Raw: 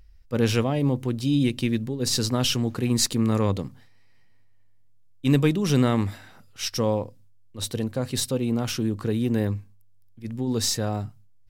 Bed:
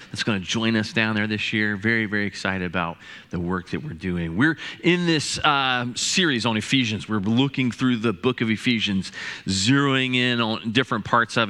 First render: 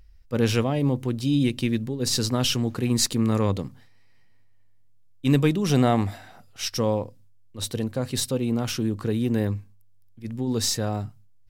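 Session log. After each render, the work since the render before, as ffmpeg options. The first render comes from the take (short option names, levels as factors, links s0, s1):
-filter_complex "[0:a]asettb=1/sr,asplit=3[s0][s1][s2];[s0]atrim=end=5.714[s3];[s1]atrim=start=5.71:end=6.62,asetpts=PTS-STARTPTS,afade=t=in:d=0.004:c=qsin,afade=t=out:st=0.906:d=0.004:c=qsin,equalizer=f=710:t=o:w=0.35:g=11[s4];[s2]atrim=start=6.616[s5];[s3][s4]acrossfade=d=0.004:c1=hsin:c2=qsin[s6];[s6][s5]acrossfade=d=0.004:c1=qsin:c2=hsin"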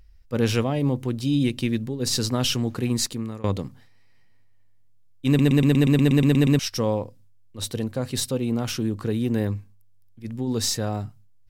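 -filter_complex "[0:a]asplit=13[s0][s1][s2][s3][s4][s5][s6][s7][s8][s9][s10][s11][s12];[s0]atrim=end=3.44,asetpts=PTS-STARTPTS,afade=t=out:st=2.84:d=0.6:silence=0.0891251[s13];[s1]atrim=start=3.44:end=5.392,asetpts=PTS-STARTPTS,afade=t=in:d=0.004:c=hsin:silence=0.0891251[s14];[s2]atrim=start=5.268:end=5.392[s15];[s3]atrim=start=5.268:end=5.392[s16];[s4]atrim=start=5.268:end=5.392[s17];[s5]atrim=start=5.268:end=5.392[s18];[s6]atrim=start=5.268:end=5.392[s19];[s7]atrim=start=5.268:end=5.392[s20];[s8]atrim=start=5.268:end=5.392[s21];[s9]atrim=start=5.268:end=5.392[s22];[s10]atrim=start=5.268:end=5.392[s23];[s11]atrim=start=5.268:end=5.392[s24];[s12]atrim=start=6.588[s25];[s13][s14]concat=n=2:v=0:a=1[s26];[s26][s15]acrossfade=d=0.004:c1=hsin:c2=hsin[s27];[s27][s16]acrossfade=d=0.004:c1=hsin:c2=hsin[s28];[s28][s17]acrossfade=d=0.004:c1=hsin:c2=hsin[s29];[s29][s18]acrossfade=d=0.004:c1=hsin:c2=hsin[s30];[s30][s19]acrossfade=d=0.004:c1=hsin:c2=hsin[s31];[s31][s20]acrossfade=d=0.004:c1=hsin:c2=hsin[s32];[s32][s21]acrossfade=d=0.004:c1=hsin:c2=hsin[s33];[s33][s22]acrossfade=d=0.004:c1=hsin:c2=hsin[s34];[s34][s23]acrossfade=d=0.004:c1=hsin:c2=hsin[s35];[s35][s24]acrossfade=d=0.004:c1=hsin:c2=hsin[s36];[s36][s25]acrossfade=d=0.004:c1=hsin:c2=hsin"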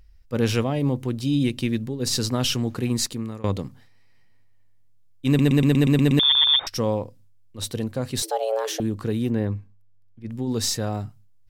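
-filter_complex "[0:a]asettb=1/sr,asplit=3[s0][s1][s2];[s0]atrim=end=6.194[s3];[s1]atrim=start=6.19:end=6.67,asetpts=PTS-STARTPTS,afade=t=in:d=0.004:c=qsin,afade=t=out:st=0.476:d=0.004:c=qsin,lowpass=f=3100:t=q:w=0.5098,lowpass=f=3100:t=q:w=0.6013,lowpass=f=3100:t=q:w=0.9,lowpass=f=3100:t=q:w=2.563,afreqshift=-3700[s4];[s2]atrim=start=6.666[s5];[s3][s4]acrossfade=d=0.004:c1=hsin:c2=qsin[s6];[s6][s5]acrossfade=d=0.004:c1=qsin:c2=hsin,asettb=1/sr,asplit=3[s7][s8][s9];[s7]atrim=end=8.224[s10];[s8]atrim=start=8.22:end=8.8,asetpts=PTS-STARTPTS,afade=t=in:d=0.004:c=qsin,afade=t=out:st=0.576:d=0.004:c=qsin,afreqshift=320[s11];[s9]atrim=start=8.796[s12];[s10][s11]acrossfade=d=0.004:c1=hsin:c2=qsin[s13];[s13][s12]acrossfade=d=0.004:c1=qsin:c2=hsin,asettb=1/sr,asplit=3[s14][s15][s16];[s14]atrim=end=9.304[s17];[s15]atrim=start=9.3:end=10.3,asetpts=PTS-STARTPTS,afade=t=in:d=0.004:c=qsin,afade=t=out:st=0.996:d=0.004:c=qsin,aemphasis=mode=reproduction:type=75kf[s18];[s16]atrim=start=10.296[s19];[s17][s18]acrossfade=d=0.004:c1=hsin:c2=qsin[s20];[s20][s19]acrossfade=d=0.004:c1=qsin:c2=hsin"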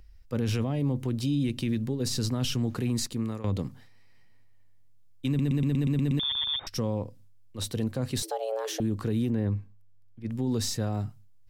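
-filter_complex "[0:a]acrossover=split=290[s0][s1];[s1]acompressor=threshold=0.0224:ratio=2.5[s2];[s0][s2]amix=inputs=2:normalize=0,alimiter=limit=0.1:level=0:latency=1:release=15"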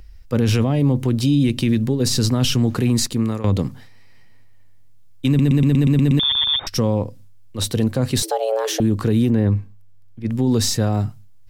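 -af "volume=3.35"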